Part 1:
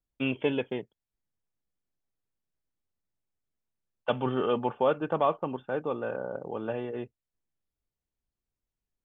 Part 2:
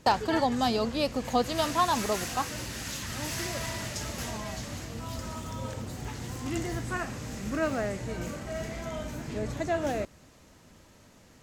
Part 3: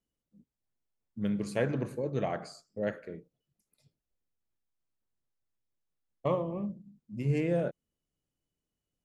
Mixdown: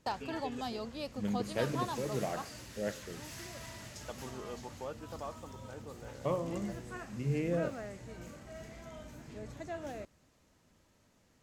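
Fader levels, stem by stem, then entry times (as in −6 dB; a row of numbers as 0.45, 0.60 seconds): −17.5, −12.5, −4.0 decibels; 0.00, 0.00, 0.00 seconds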